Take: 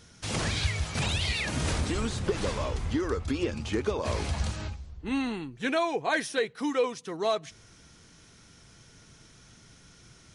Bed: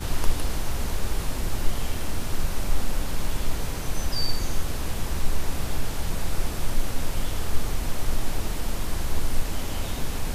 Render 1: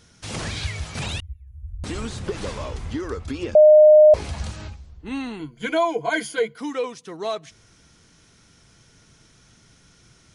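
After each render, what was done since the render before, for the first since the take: 1.2–1.84 inverse Chebyshev band-stop 190–9600 Hz, stop band 50 dB; 3.55–4.14 bleep 611 Hz -7 dBFS; 5.39–6.58 ripple EQ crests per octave 1.8, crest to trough 16 dB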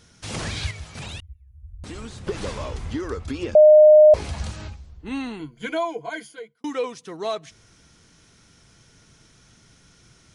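0.71–2.27 gain -6.5 dB; 5.24–6.64 fade out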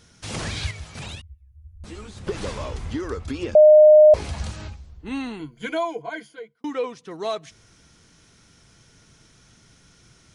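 1.15–2.17 ensemble effect; 6.02–7.11 LPF 3200 Hz 6 dB/oct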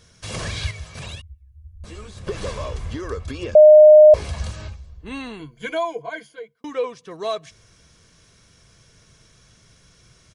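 comb 1.8 ms, depth 40%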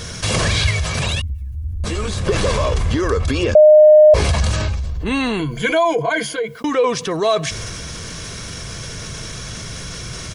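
transient shaper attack +1 dB, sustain +5 dB; fast leveller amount 50%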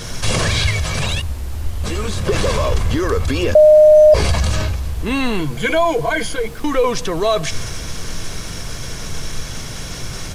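add bed -4 dB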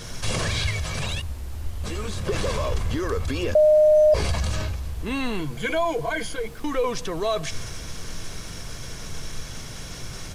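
gain -8 dB

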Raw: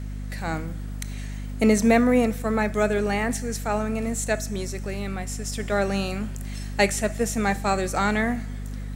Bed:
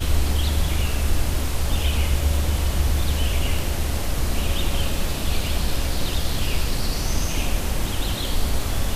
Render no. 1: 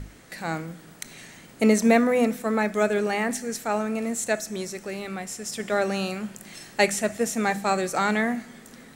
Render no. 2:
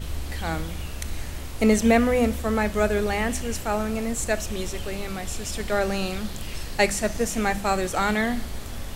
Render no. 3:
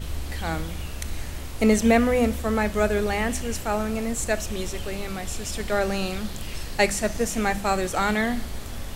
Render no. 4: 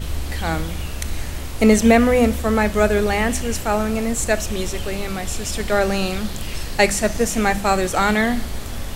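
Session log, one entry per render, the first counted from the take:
notches 50/100/150/200/250/300 Hz
add bed -11 dB
nothing audible
gain +5.5 dB; limiter -1 dBFS, peak gain reduction 1 dB

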